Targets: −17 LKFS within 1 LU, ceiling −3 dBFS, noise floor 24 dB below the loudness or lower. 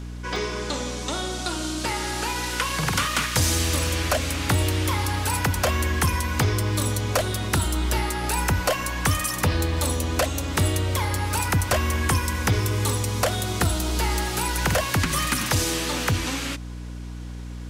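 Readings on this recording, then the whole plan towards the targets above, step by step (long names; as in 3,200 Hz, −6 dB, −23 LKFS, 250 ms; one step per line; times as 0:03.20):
number of dropouts 4; longest dropout 1.7 ms; mains hum 60 Hz; hum harmonics up to 300 Hz; level of the hum −32 dBFS; integrated loudness −24.0 LKFS; sample peak −11.5 dBFS; target loudness −17.0 LKFS
→ repair the gap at 0:00.36/0:03.87/0:08.81/0:15.10, 1.7 ms
hum removal 60 Hz, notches 5
level +7 dB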